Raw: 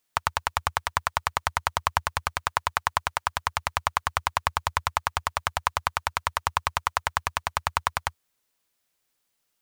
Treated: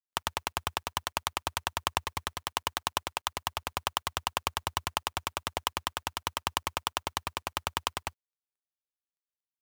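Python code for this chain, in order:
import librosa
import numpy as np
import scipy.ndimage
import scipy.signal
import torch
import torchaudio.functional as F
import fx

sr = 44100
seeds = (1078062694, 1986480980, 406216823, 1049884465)

y = fx.dead_time(x, sr, dead_ms=0.27)
y = fx.low_shelf(y, sr, hz=220.0, db=-5.5)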